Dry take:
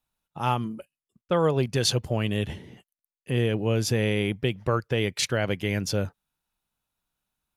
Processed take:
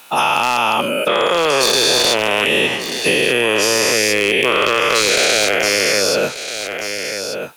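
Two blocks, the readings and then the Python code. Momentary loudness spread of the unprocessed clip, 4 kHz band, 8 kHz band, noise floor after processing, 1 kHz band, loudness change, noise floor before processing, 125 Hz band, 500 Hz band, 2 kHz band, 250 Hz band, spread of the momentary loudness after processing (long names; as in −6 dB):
7 LU, +17.0 dB, +17.0 dB, −27 dBFS, +15.0 dB, +11.5 dB, below −85 dBFS, −7.5 dB, +11.5 dB, +18.5 dB, +4.5 dB, 9 LU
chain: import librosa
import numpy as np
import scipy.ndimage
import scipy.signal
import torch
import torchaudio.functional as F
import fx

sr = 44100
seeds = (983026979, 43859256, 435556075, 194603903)

p1 = fx.spec_dilate(x, sr, span_ms=480)
p2 = scipy.signal.sosfilt(scipy.signal.butter(2, 410.0, 'highpass', fs=sr, output='sos'), p1)
p3 = fx.peak_eq(p2, sr, hz=2500.0, db=6.0, octaves=0.3)
p4 = fx.over_compress(p3, sr, threshold_db=-30.0, ratio=-1.0)
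p5 = p3 + (p4 * librosa.db_to_amplitude(1.0))
p6 = 10.0 ** (-8.0 / 20.0) * (np.abs((p5 / 10.0 ** (-8.0 / 20.0) + 3.0) % 4.0 - 2.0) - 1.0)
p7 = p6 + 10.0 ** (-18.0 / 20.0) * np.pad(p6, (int(1185 * sr / 1000.0), 0))[:len(p6)]
p8 = fx.band_squash(p7, sr, depth_pct=70)
y = p8 * librosa.db_to_amplitude(2.5)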